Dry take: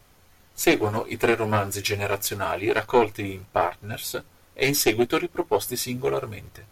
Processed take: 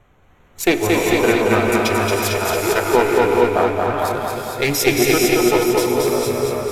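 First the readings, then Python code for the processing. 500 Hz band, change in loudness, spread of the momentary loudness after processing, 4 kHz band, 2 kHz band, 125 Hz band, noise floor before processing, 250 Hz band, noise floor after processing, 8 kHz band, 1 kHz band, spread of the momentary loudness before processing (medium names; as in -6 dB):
+8.5 dB, +7.5 dB, 6 LU, +6.5 dB, +7.5 dB, +6.0 dB, -57 dBFS, +8.5 dB, -52 dBFS, +6.5 dB, +7.5 dB, 11 LU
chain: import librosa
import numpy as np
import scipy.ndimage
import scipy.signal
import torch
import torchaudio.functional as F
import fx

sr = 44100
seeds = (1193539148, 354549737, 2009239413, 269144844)

y = fx.wiener(x, sr, points=9)
y = fx.echo_feedback(y, sr, ms=226, feedback_pct=57, wet_db=-3.5)
y = fx.rev_gated(y, sr, seeds[0], gate_ms=480, shape='rising', drr_db=0.5)
y = y * 10.0 ** (3.0 / 20.0)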